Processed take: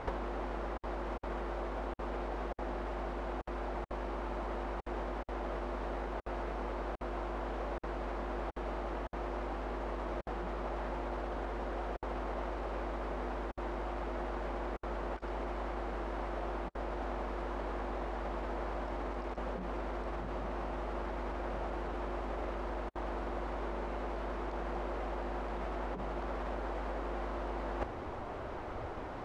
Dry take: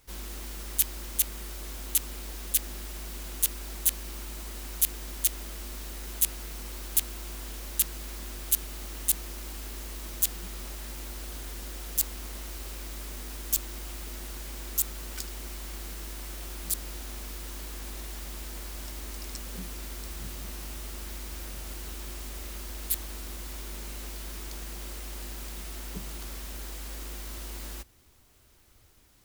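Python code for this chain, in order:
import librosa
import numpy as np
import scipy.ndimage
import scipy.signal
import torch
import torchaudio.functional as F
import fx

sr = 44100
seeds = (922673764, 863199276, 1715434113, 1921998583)

y = fx.low_shelf(x, sr, hz=190.0, db=-8.5)
y = fx.over_compress(y, sr, threshold_db=-48.0, ratio=-0.5)
y = scipy.signal.sosfilt(scipy.signal.butter(2, 1300.0, 'lowpass', fs=sr, output='sos'), y)
y = fx.peak_eq(y, sr, hz=690.0, db=8.5, octaves=1.7)
y = y * 10.0 ** (12.0 / 20.0)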